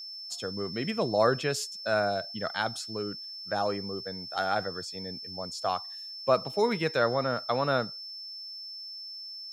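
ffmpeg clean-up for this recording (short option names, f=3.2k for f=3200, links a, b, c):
-af "adeclick=t=4,bandreject=f=5.3k:w=30,agate=range=-21dB:threshold=-34dB"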